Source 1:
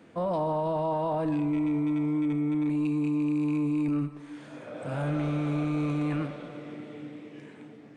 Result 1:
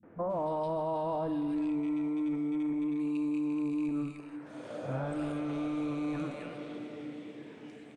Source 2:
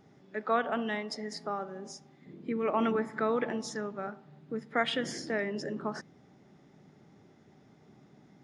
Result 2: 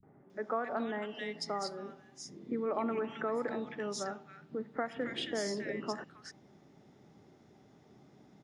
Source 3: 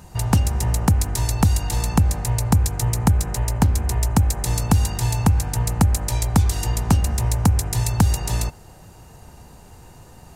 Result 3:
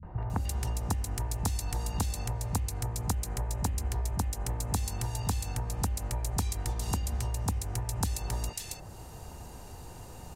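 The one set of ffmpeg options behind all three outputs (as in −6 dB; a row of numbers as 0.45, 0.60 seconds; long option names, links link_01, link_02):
-filter_complex "[0:a]acompressor=threshold=-29dB:ratio=5,acrossover=split=170|1800[link_01][link_02][link_03];[link_02]adelay=30[link_04];[link_03]adelay=300[link_05];[link_01][link_04][link_05]amix=inputs=3:normalize=0"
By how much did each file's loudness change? −5.5, −4.0, −12.5 LU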